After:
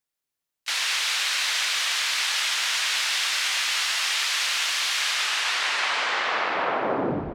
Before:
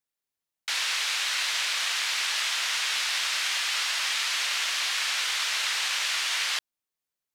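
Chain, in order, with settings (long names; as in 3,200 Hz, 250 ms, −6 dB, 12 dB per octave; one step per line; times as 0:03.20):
turntable brake at the end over 2.41 s
pitch-shifted copies added −5 semitones −17 dB, +4 semitones −16 dB
echo with a time of its own for lows and highs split 760 Hz, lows 231 ms, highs 147 ms, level −9 dB
level +2 dB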